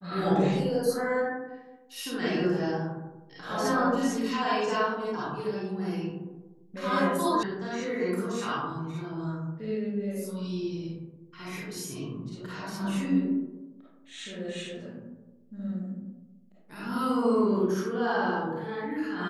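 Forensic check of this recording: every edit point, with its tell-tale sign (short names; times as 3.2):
7.43 sound cut off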